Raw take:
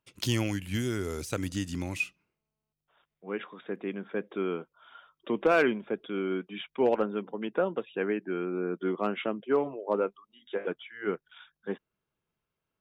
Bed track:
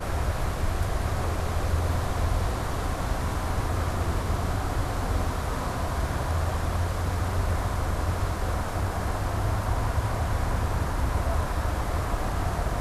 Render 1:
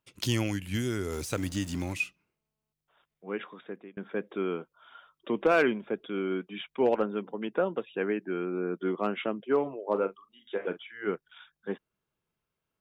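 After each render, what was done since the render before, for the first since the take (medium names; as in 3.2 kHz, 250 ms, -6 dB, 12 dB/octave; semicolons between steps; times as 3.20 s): 1.12–1.93 s: jump at every zero crossing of -43.5 dBFS; 3.53–3.97 s: fade out; 9.84–11.02 s: doubling 41 ms -13 dB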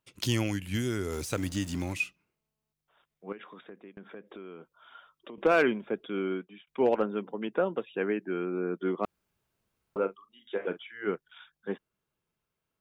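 3.32–5.38 s: compression 5:1, threshold -42 dBFS; 6.27–6.67 s: fade out; 9.05–9.96 s: room tone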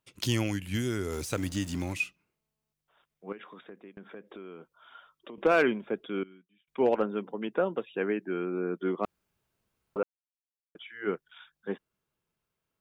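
6.23–6.68 s: amplifier tone stack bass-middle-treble 6-0-2; 10.03–10.75 s: mute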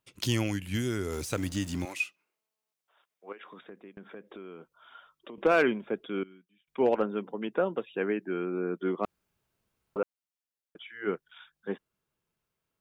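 1.85–3.45 s: high-pass 450 Hz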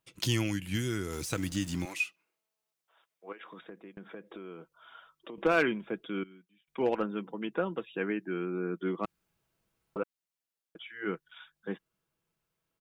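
dynamic bell 590 Hz, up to -6 dB, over -41 dBFS, Q 0.94; comb 6.1 ms, depth 30%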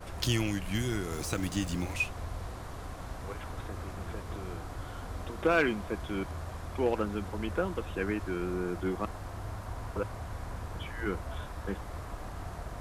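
add bed track -13 dB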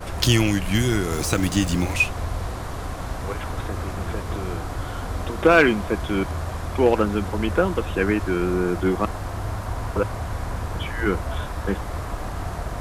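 trim +11 dB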